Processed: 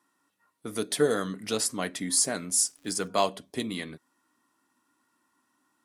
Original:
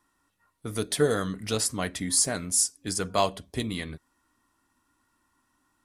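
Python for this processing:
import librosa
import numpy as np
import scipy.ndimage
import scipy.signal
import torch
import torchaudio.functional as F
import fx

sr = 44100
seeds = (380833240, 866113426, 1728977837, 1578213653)

y = scipy.signal.sosfilt(scipy.signal.cheby1(2, 1.0, 220.0, 'highpass', fs=sr, output='sos'), x)
y = fx.dmg_crackle(y, sr, seeds[0], per_s=250.0, level_db=-45.0, at=(2.64, 3.07), fade=0.02)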